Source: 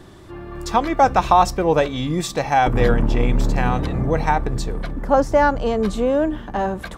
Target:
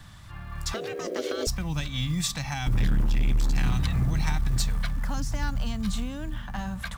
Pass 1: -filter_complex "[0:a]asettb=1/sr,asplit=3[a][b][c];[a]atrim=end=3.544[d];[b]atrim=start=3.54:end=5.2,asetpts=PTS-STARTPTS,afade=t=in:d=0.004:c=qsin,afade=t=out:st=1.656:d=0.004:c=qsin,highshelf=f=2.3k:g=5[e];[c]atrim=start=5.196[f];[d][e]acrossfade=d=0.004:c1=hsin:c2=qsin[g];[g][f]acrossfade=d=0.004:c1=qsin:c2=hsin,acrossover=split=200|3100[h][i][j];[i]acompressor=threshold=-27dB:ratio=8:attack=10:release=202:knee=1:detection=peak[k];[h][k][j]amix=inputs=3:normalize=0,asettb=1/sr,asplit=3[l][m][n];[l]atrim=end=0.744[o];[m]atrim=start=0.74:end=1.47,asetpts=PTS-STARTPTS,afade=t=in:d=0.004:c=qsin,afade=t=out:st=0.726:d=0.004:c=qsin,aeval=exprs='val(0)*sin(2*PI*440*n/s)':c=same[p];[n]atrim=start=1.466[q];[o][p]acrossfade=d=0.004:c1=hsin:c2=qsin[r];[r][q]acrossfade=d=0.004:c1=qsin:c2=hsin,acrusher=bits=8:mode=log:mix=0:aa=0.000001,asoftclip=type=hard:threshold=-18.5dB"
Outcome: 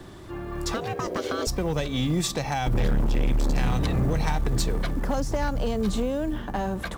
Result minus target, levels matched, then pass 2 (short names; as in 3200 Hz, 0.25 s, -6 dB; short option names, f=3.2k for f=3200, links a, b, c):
1000 Hz band +5.0 dB
-filter_complex "[0:a]asettb=1/sr,asplit=3[a][b][c];[a]atrim=end=3.544[d];[b]atrim=start=3.54:end=5.2,asetpts=PTS-STARTPTS,afade=t=in:d=0.004:c=qsin,afade=t=out:st=1.656:d=0.004:c=qsin,highshelf=f=2.3k:g=5[e];[c]atrim=start=5.196[f];[d][e]acrossfade=d=0.004:c1=hsin:c2=qsin[g];[g][f]acrossfade=d=0.004:c1=qsin:c2=hsin,acrossover=split=200|3100[h][i][j];[i]acompressor=threshold=-27dB:ratio=8:attack=10:release=202:knee=1:detection=peak,highpass=1.2k[k];[h][k][j]amix=inputs=3:normalize=0,asettb=1/sr,asplit=3[l][m][n];[l]atrim=end=0.744[o];[m]atrim=start=0.74:end=1.47,asetpts=PTS-STARTPTS,afade=t=in:d=0.004:c=qsin,afade=t=out:st=0.726:d=0.004:c=qsin,aeval=exprs='val(0)*sin(2*PI*440*n/s)':c=same[p];[n]atrim=start=1.466[q];[o][p]acrossfade=d=0.004:c1=hsin:c2=qsin[r];[r][q]acrossfade=d=0.004:c1=qsin:c2=hsin,acrusher=bits=8:mode=log:mix=0:aa=0.000001,asoftclip=type=hard:threshold=-18.5dB"